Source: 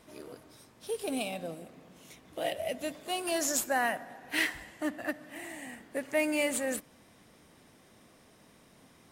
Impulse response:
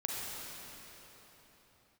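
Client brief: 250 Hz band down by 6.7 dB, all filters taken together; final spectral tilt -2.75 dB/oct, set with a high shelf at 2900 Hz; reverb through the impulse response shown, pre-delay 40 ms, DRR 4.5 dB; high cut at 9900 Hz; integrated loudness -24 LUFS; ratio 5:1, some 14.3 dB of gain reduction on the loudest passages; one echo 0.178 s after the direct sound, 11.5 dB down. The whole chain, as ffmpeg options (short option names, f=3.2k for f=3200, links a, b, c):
-filter_complex "[0:a]lowpass=9.9k,equalizer=f=250:t=o:g=-8.5,highshelf=f=2.9k:g=-6,acompressor=threshold=-43dB:ratio=5,aecho=1:1:178:0.266,asplit=2[a][b];[1:a]atrim=start_sample=2205,adelay=40[c];[b][c]afir=irnorm=-1:irlink=0,volume=-8.5dB[d];[a][d]amix=inputs=2:normalize=0,volume=22dB"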